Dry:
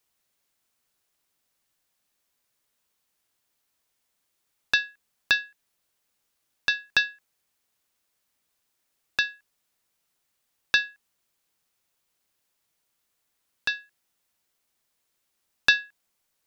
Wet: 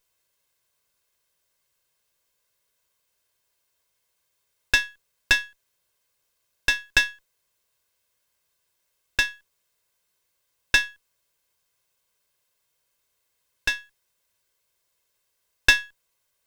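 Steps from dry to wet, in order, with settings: minimum comb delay 1.9 ms; gain +3.5 dB

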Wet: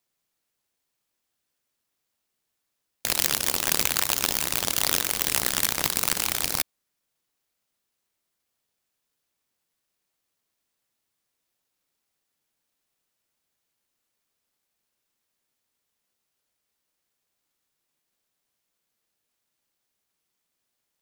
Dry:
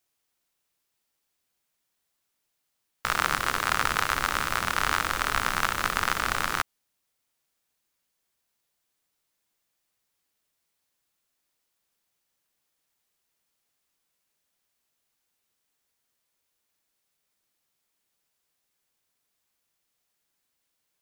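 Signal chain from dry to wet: HPF 160 Hz 6 dB/oct; bell 1200 Hz +3 dB; noise-modulated delay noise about 4400 Hz, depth 0.31 ms

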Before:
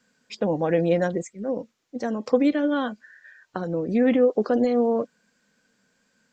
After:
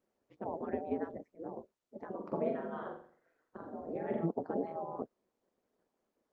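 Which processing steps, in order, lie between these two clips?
spectral gate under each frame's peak -10 dB weak; ladder band-pass 390 Hz, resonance 40%; ring modulator 84 Hz; 2.16–4.26 flutter echo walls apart 7.4 m, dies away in 0.51 s; gain +12 dB; Opus 24 kbps 48000 Hz

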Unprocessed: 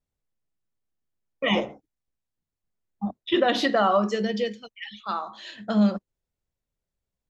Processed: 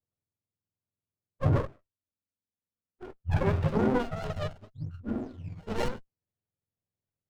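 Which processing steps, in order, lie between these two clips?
spectrum mirrored in octaves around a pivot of 540 Hz; 1.65–3.19 envelope flanger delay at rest 4.1 ms, full sweep at -35.5 dBFS; in parallel at -4 dB: decimation with a swept rate 11×, swing 160% 0.94 Hz; on the sum: low-pass sweep 670 Hz -> 3600 Hz, 2.77–4.08; running maximum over 33 samples; gain -7 dB

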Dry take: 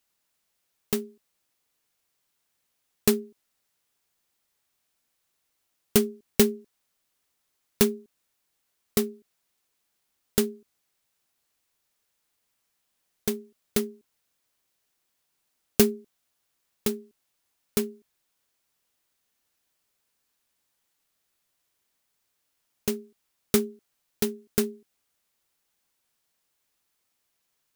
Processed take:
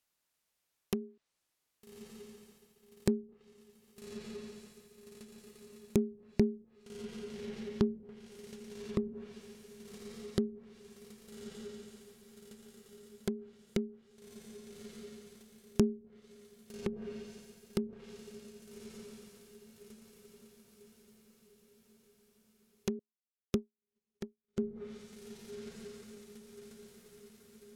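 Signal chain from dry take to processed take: diffused feedback echo 1.227 s, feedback 48%, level -12 dB; treble ducked by the level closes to 340 Hz, closed at -24.5 dBFS; 22.99–24.59 upward expander 2.5:1, over -47 dBFS; gain -5 dB

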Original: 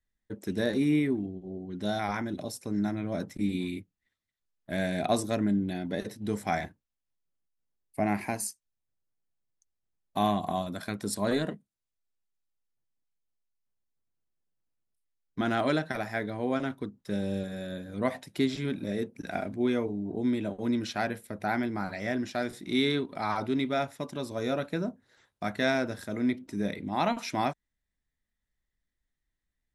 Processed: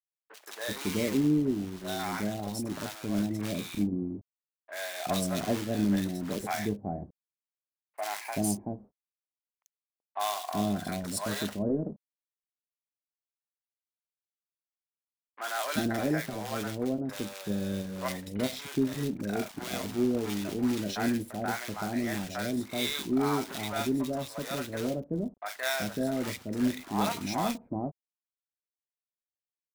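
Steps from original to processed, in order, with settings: companded quantiser 4-bit; three bands offset in time mids, highs, lows 40/380 ms, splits 640/2000 Hz

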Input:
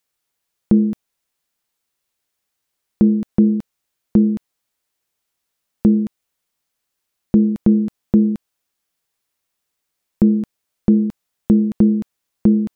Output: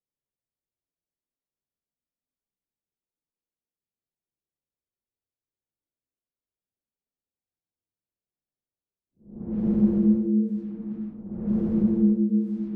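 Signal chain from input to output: Paulstretch 5.1×, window 0.25 s, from 1.09; low-pass opened by the level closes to 440 Hz, open at -13 dBFS; gain -8.5 dB

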